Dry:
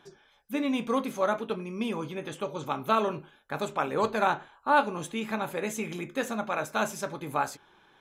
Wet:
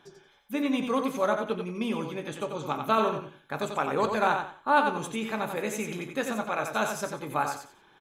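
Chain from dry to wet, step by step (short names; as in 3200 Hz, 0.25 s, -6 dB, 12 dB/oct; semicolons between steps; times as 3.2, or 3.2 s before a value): feedback echo 90 ms, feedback 25%, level -6 dB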